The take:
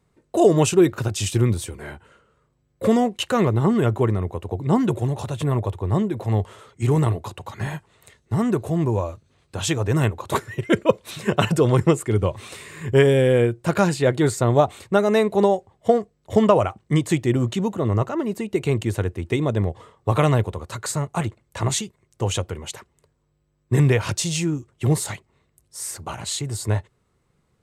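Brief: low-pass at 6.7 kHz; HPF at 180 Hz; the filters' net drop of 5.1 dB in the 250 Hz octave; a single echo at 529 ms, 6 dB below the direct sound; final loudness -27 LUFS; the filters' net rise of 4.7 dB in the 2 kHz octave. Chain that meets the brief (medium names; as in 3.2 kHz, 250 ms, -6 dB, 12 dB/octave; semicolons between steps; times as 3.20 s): high-pass 180 Hz; low-pass 6.7 kHz; peaking EQ 250 Hz -5.5 dB; peaking EQ 2 kHz +6 dB; delay 529 ms -6 dB; trim -3.5 dB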